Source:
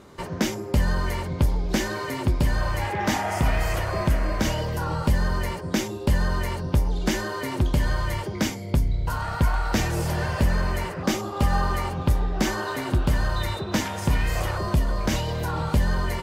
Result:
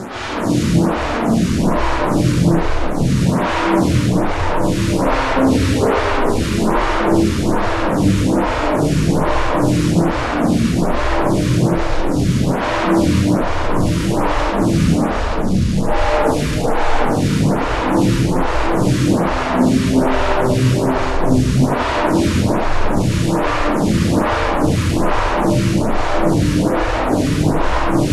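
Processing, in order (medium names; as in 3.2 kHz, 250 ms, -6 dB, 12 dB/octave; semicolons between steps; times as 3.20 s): compression 2.5:1, threshold -25 dBFS, peak gain reduction 7 dB; peaking EQ 330 Hz +15 dB 1.7 oct; transient shaper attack -2 dB, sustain +7 dB; four-pole ladder low-pass 2.4 kHz, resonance 45%; word length cut 8-bit, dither none; formant-preserving pitch shift -10 st; harmonic-percussive split percussive -16 dB; fuzz box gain 55 dB, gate -57 dBFS; speed mistake 78 rpm record played at 45 rpm; reverberation RT60 2.6 s, pre-delay 102 ms, DRR -8.5 dB; lamp-driven phase shifter 1.2 Hz; trim -7 dB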